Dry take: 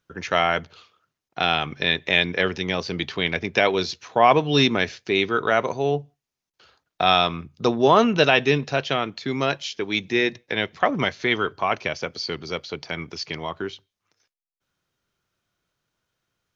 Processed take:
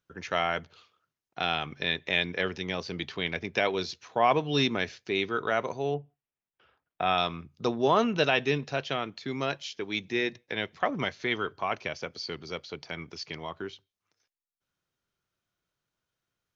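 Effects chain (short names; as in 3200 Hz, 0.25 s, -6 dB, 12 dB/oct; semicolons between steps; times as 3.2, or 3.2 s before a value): 5.94–7.18 polynomial smoothing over 25 samples; gain -7.5 dB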